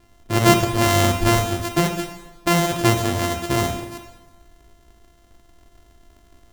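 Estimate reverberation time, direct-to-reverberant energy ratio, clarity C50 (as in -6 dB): 1.1 s, 4.0 dB, 7.0 dB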